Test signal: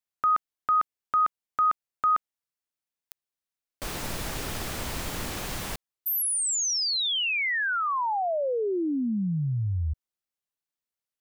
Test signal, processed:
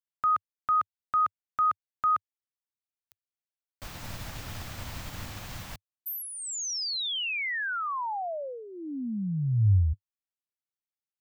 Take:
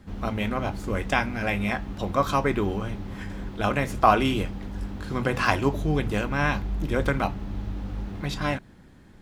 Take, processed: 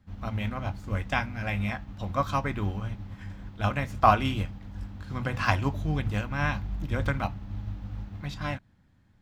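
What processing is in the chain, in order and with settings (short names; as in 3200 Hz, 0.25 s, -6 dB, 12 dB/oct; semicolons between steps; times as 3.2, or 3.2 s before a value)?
fifteen-band EQ 100 Hz +8 dB, 400 Hz -9 dB, 10000 Hz -6 dB; upward expander 1.5:1, over -41 dBFS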